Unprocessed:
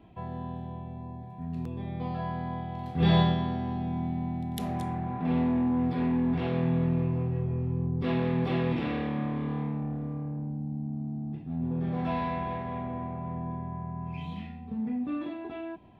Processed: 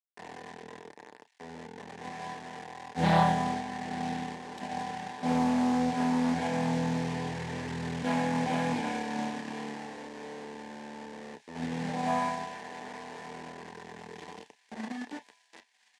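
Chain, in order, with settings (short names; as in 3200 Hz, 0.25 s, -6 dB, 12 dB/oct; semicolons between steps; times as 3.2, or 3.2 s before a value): gate -30 dBFS, range -13 dB; comb 1.3 ms, depth 96%; in parallel at +1 dB: compressor 6:1, threshold -40 dBFS, peak gain reduction 23 dB; on the sum: bit-crush 6-bit; crossover distortion -37.5 dBFS; speaker cabinet 230–8700 Hz, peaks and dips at 240 Hz +6 dB, 430 Hz +10 dB, 890 Hz +9 dB, 1300 Hz -8 dB, 1800 Hz +9 dB; thin delay 1.03 s, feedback 65%, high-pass 2600 Hz, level -16 dB; on a send at -9 dB: reverb, pre-delay 3 ms; on the sum: Doppler distortion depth 0.24 ms; gain -4 dB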